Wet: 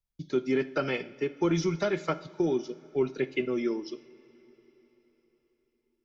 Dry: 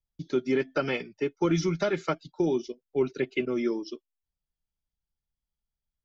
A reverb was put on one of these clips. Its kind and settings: two-slope reverb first 0.56 s, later 4.5 s, from -17 dB, DRR 11.5 dB; gain -1.5 dB

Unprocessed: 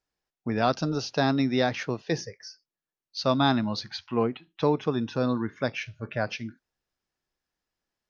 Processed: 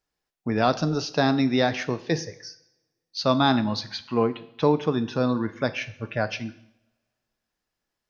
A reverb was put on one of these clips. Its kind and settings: two-slope reverb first 0.74 s, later 2.1 s, from -27 dB, DRR 12.5 dB; gain +2.5 dB

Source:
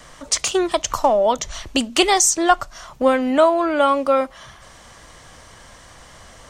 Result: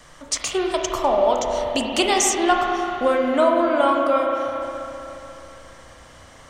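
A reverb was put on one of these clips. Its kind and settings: spring tank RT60 3.3 s, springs 32/44 ms, chirp 55 ms, DRR 0 dB; gain -4.5 dB

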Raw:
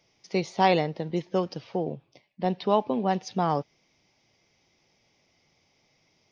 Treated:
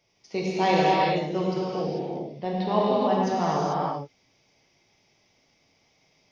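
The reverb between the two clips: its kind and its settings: non-linear reverb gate 0.47 s flat, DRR -6.5 dB; gain -4.5 dB

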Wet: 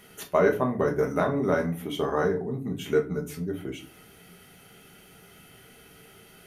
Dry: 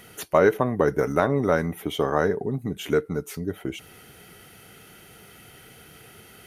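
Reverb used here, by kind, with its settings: shoebox room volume 200 m³, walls furnished, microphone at 1.3 m; gain -6 dB

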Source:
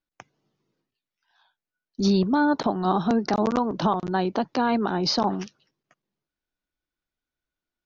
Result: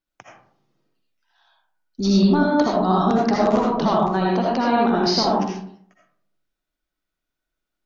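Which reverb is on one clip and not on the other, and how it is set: digital reverb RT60 0.61 s, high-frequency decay 0.45×, pre-delay 40 ms, DRR -3.5 dB

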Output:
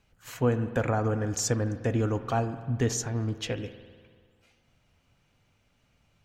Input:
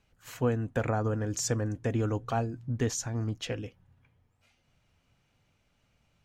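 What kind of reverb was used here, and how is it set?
spring tank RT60 1.8 s, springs 49 ms, chirp 30 ms, DRR 11 dB; gain +2.5 dB

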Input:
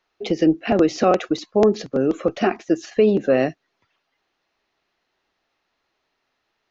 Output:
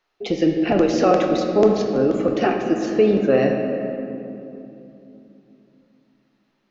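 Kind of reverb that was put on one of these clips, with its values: shoebox room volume 120 m³, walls hard, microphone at 0.32 m; gain -1 dB

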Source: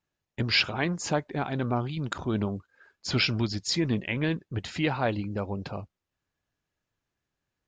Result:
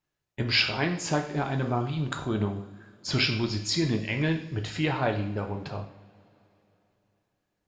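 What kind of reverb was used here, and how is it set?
two-slope reverb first 0.56 s, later 3.4 s, from -22 dB, DRR 3 dB; gain -1 dB

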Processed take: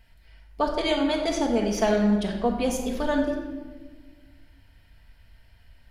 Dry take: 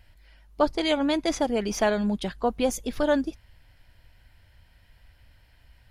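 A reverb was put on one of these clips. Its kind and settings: shoebox room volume 1100 m³, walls mixed, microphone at 1.6 m; gain -2.5 dB

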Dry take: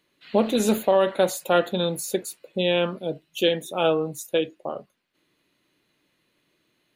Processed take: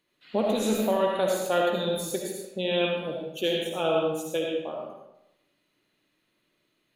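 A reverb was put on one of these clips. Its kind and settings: digital reverb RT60 0.88 s, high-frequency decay 0.85×, pre-delay 35 ms, DRR -1 dB; gain -6.5 dB

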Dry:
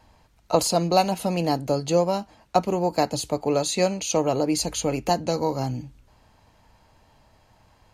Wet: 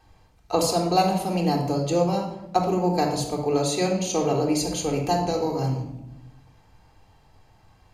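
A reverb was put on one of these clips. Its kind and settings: shoebox room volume 2600 m³, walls furnished, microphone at 3.7 m; gain -4 dB

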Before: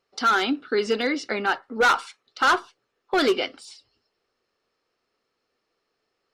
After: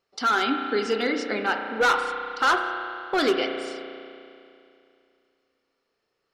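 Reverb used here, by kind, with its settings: spring tank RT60 2.6 s, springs 33 ms, chirp 55 ms, DRR 4.5 dB; gain -2 dB

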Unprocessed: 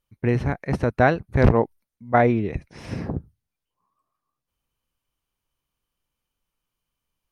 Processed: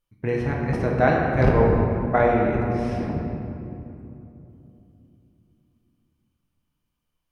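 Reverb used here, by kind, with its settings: shoebox room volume 120 m³, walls hard, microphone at 0.51 m; gain -4 dB

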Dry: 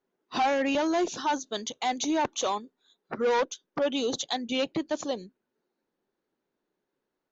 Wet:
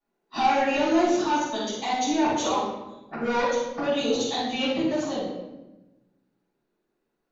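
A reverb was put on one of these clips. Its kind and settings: shoebox room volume 460 m³, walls mixed, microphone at 8.3 m; gain -12.5 dB

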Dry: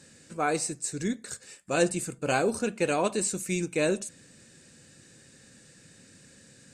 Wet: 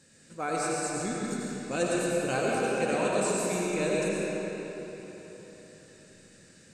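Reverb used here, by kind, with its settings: digital reverb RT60 4 s, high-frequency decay 0.7×, pre-delay 55 ms, DRR -5 dB; gain -6 dB

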